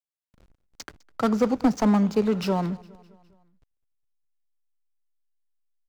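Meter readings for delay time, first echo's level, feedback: 0.205 s, -23.0 dB, 55%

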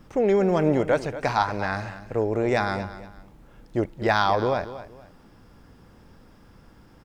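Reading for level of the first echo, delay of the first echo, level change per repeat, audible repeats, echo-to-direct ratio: -14.0 dB, 0.234 s, -10.5 dB, 2, -13.5 dB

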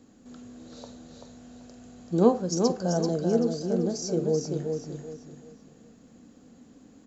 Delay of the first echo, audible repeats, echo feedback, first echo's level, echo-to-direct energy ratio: 0.386 s, 3, 31%, -5.0 dB, -4.5 dB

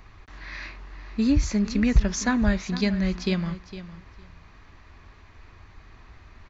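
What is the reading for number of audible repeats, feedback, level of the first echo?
2, 16%, -14.0 dB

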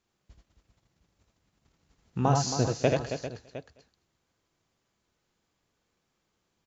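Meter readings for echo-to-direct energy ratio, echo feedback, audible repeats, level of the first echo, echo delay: -1.0 dB, no steady repeat, 8, -13.0 dB, 50 ms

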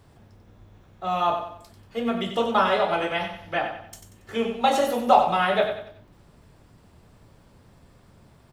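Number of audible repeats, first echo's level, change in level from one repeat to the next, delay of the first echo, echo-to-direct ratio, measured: 4, -8.0 dB, -8.5 dB, 93 ms, -7.5 dB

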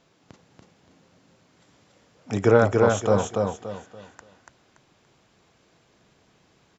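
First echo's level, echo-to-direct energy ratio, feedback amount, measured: -3.0 dB, -2.5 dB, 31%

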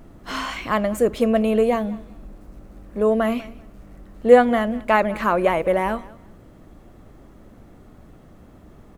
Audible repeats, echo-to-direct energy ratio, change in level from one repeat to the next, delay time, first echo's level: 2, -21.0 dB, -13.0 dB, 0.194 s, -21.0 dB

